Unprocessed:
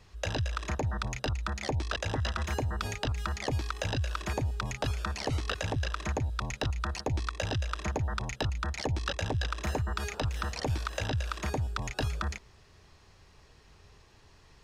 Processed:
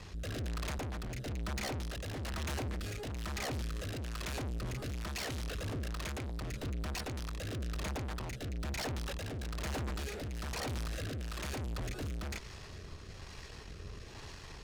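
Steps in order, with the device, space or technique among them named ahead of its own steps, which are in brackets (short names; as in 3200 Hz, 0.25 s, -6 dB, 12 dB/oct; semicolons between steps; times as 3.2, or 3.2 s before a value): overdriven rotary cabinet (tube stage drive 50 dB, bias 0.5; rotary speaker horn 1.1 Hz); gain +14.5 dB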